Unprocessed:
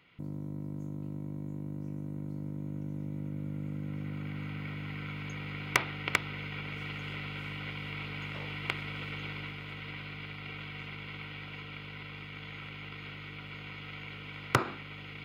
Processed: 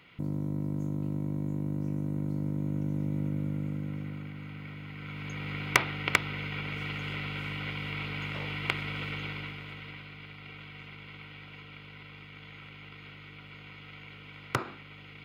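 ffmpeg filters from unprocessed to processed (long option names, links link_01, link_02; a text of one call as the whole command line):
ffmpeg -i in.wav -af "volume=13.5dB,afade=type=out:start_time=3.24:duration=1.09:silence=0.316228,afade=type=in:start_time=4.95:duration=0.58:silence=0.446684,afade=type=out:start_time=9.05:duration=1.03:silence=0.421697" out.wav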